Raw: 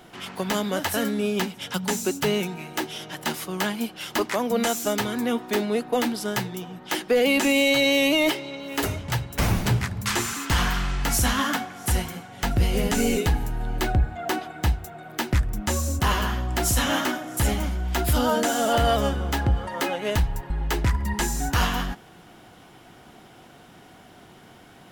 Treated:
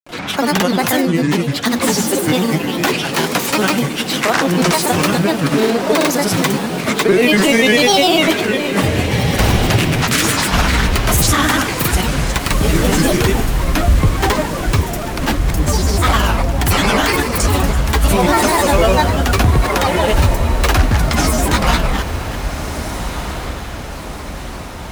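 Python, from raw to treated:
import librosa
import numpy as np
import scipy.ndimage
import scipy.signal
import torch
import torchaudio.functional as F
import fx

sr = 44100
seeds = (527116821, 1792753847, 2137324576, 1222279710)

p1 = fx.reverse_delay(x, sr, ms=232, wet_db=-13)
p2 = fx.over_compress(p1, sr, threshold_db=-29.0, ratio=-1.0)
p3 = p1 + F.gain(torch.from_numpy(p2), -3.0).numpy()
p4 = fx.granulator(p3, sr, seeds[0], grain_ms=100.0, per_s=20.0, spray_ms=100.0, spread_st=7)
p5 = fx.echo_diffused(p4, sr, ms=1571, feedback_pct=50, wet_db=-9.5)
y = F.gain(torch.from_numpy(p5), 8.0).numpy()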